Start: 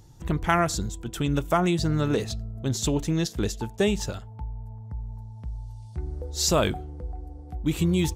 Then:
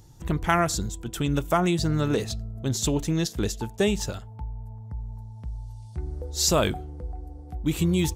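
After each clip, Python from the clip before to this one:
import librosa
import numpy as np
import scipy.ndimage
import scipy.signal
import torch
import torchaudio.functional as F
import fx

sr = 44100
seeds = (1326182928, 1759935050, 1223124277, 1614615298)

y = fx.high_shelf(x, sr, hz=7100.0, db=4.0)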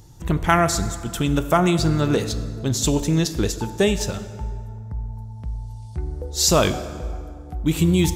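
y = fx.rev_plate(x, sr, seeds[0], rt60_s=2.0, hf_ratio=0.65, predelay_ms=0, drr_db=10.5)
y = y * 10.0 ** (4.5 / 20.0)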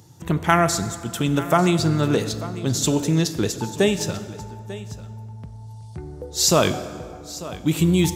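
y = scipy.signal.sosfilt(scipy.signal.butter(4, 93.0, 'highpass', fs=sr, output='sos'), x)
y = y + 10.0 ** (-16.5 / 20.0) * np.pad(y, (int(894 * sr / 1000.0), 0))[:len(y)]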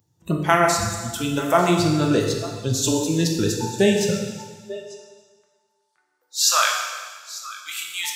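y = fx.filter_sweep_highpass(x, sr, from_hz=60.0, to_hz=1400.0, start_s=3.63, end_s=5.27, q=2.5)
y = fx.noise_reduce_blind(y, sr, reduce_db=20)
y = fx.rev_plate(y, sr, seeds[1], rt60_s=1.5, hf_ratio=1.0, predelay_ms=0, drr_db=1.0)
y = y * 10.0 ** (-1.0 / 20.0)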